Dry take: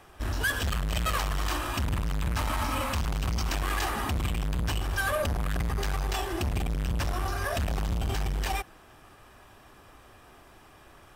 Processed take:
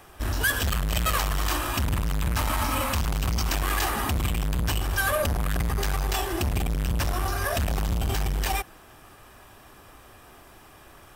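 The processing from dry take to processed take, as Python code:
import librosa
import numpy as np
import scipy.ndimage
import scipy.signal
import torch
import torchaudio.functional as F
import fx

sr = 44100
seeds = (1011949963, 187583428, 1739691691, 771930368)

y = fx.high_shelf(x, sr, hz=10000.0, db=9.5)
y = F.gain(torch.from_numpy(y), 3.0).numpy()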